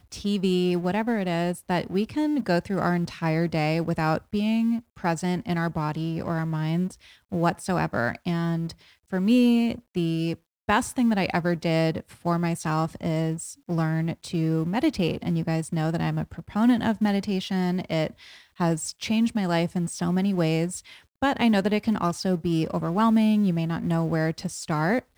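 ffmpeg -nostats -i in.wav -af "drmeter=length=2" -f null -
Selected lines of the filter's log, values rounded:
Channel 1: DR: 9.8
Overall DR: 9.8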